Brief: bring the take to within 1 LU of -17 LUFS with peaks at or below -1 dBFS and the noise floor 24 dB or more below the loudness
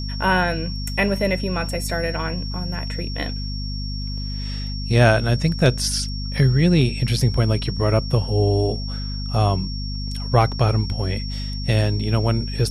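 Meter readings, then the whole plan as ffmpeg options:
hum 50 Hz; highest harmonic 250 Hz; hum level -25 dBFS; steady tone 5.5 kHz; tone level -33 dBFS; loudness -21.5 LUFS; peak level -2.5 dBFS; loudness target -17.0 LUFS
-> -af "bandreject=f=50:t=h:w=4,bandreject=f=100:t=h:w=4,bandreject=f=150:t=h:w=4,bandreject=f=200:t=h:w=4,bandreject=f=250:t=h:w=4"
-af "bandreject=f=5500:w=30"
-af "volume=1.68,alimiter=limit=0.891:level=0:latency=1"

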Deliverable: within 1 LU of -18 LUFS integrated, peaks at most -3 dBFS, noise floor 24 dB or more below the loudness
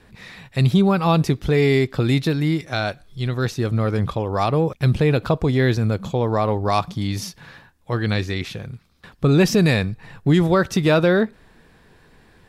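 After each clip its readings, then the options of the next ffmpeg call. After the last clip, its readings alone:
loudness -20.0 LUFS; peak level -7.0 dBFS; loudness target -18.0 LUFS
-> -af "volume=1.26"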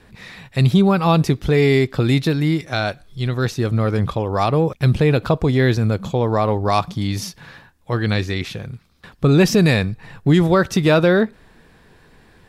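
loudness -18.0 LUFS; peak level -5.0 dBFS; noise floor -51 dBFS

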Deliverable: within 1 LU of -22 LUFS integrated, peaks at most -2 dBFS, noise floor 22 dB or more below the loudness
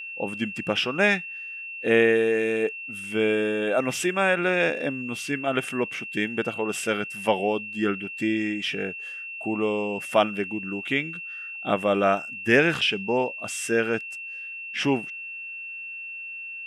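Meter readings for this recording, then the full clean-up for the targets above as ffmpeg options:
steady tone 2.7 kHz; tone level -34 dBFS; loudness -25.5 LUFS; peak level -6.5 dBFS; loudness target -22.0 LUFS
-> -af "bandreject=f=2700:w=30"
-af "volume=1.5"

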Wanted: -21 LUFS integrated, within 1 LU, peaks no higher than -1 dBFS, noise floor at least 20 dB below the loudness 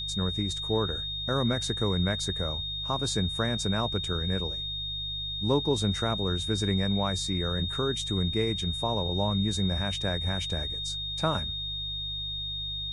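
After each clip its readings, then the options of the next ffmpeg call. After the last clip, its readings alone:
hum 50 Hz; highest harmonic 150 Hz; hum level -41 dBFS; steady tone 3.7 kHz; tone level -32 dBFS; loudness -28.5 LUFS; peak level -12.5 dBFS; loudness target -21.0 LUFS
-> -af "bandreject=f=50:t=h:w=4,bandreject=f=100:t=h:w=4,bandreject=f=150:t=h:w=4"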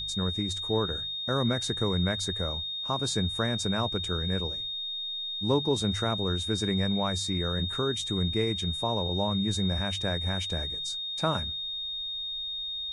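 hum not found; steady tone 3.7 kHz; tone level -32 dBFS
-> -af "bandreject=f=3700:w=30"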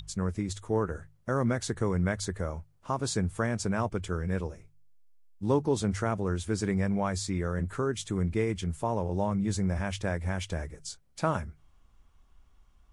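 steady tone not found; loudness -31.0 LUFS; peak level -13.0 dBFS; loudness target -21.0 LUFS
-> -af "volume=3.16"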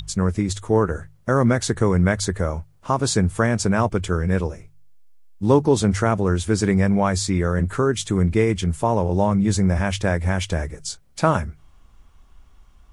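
loudness -21.0 LUFS; peak level -3.0 dBFS; noise floor -53 dBFS

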